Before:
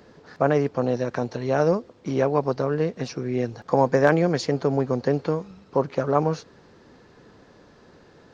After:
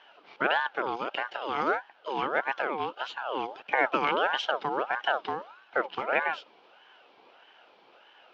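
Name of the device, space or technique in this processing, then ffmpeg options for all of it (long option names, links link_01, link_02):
voice changer toy: -af "aeval=exprs='val(0)*sin(2*PI*960*n/s+960*0.4/1.6*sin(2*PI*1.6*n/s))':channel_layout=same,highpass=420,equalizer=frequency=1100:width_type=q:width=4:gain=-8,equalizer=frequency=1900:width_type=q:width=4:gain=-7,equalizer=frequency=3000:width_type=q:width=4:gain=9,lowpass=frequency=4200:width=0.5412,lowpass=frequency=4200:width=1.3066"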